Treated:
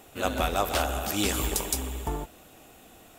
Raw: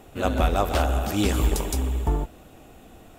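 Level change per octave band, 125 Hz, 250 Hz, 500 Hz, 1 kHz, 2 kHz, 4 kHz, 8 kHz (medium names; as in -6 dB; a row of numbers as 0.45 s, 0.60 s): -9.5 dB, -6.0 dB, -4.0 dB, -2.5 dB, 0.0 dB, +1.5 dB, +4.0 dB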